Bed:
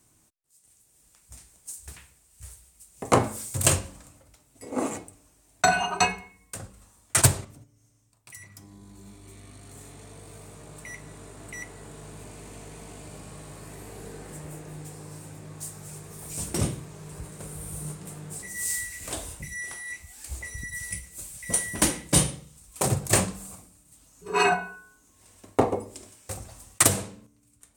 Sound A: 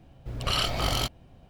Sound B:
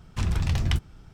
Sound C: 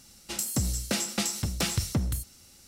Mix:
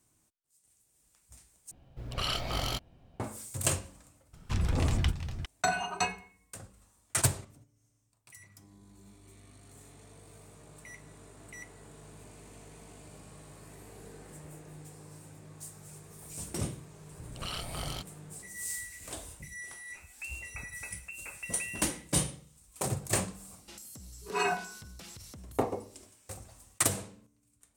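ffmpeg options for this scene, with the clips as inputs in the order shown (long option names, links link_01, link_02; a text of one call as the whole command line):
ffmpeg -i bed.wav -i cue0.wav -i cue1.wav -i cue2.wav -filter_complex "[1:a]asplit=2[link_01][link_02];[3:a]asplit=2[link_03][link_04];[0:a]volume=-8dB[link_05];[2:a]aecho=1:1:403:0.335[link_06];[link_02]tremolo=f=180:d=0.571[link_07];[link_03]lowpass=frequency=2400:width_type=q:width=0.5098,lowpass=frequency=2400:width_type=q:width=0.6013,lowpass=frequency=2400:width_type=q:width=0.9,lowpass=frequency=2400:width_type=q:width=2.563,afreqshift=-2800[link_08];[link_04]acompressor=threshold=-38dB:ratio=12:attack=10:release=21:knee=6:detection=rms[link_09];[link_05]asplit=2[link_10][link_11];[link_10]atrim=end=1.714[link_12];[link_01]atrim=end=1.49,asetpts=PTS-STARTPTS,volume=-6dB[link_13];[link_11]atrim=start=3.196[link_14];[link_06]atrim=end=1.13,asetpts=PTS-STARTPTS,volume=-4dB,afade=type=in:duration=0.004:curve=hsin,afade=type=out:start_time=1.126:duration=0.004:curve=hsin,adelay=190953S[link_15];[link_07]atrim=end=1.49,asetpts=PTS-STARTPTS,volume=-9.5dB,afade=type=in:duration=0.004:curve=hsin,afade=type=out:start_time=1.486:duration=0.004:curve=hsin,adelay=16950[link_16];[link_08]atrim=end=2.67,asetpts=PTS-STARTPTS,volume=-15dB,afade=type=in:duration=0.004:curve=hsin,afade=type=out:start_time=2.666:duration=0.004:curve=hsin,adelay=19650[link_17];[link_09]atrim=end=2.67,asetpts=PTS-STARTPTS,volume=-9.5dB,afade=type=in:duration=0.004:curve=hsin,afade=type=out:start_time=2.666:duration=0.004:curve=hsin,adelay=23390[link_18];[link_12][link_13]acrossfade=duration=0.004:curve1=hsin:curve2=hsin[link_19];[link_19][link_14]acrossfade=duration=0.004:curve1=hsin:curve2=hsin[link_20];[link_20][link_15][link_16][link_17][link_18]amix=inputs=5:normalize=0" out.wav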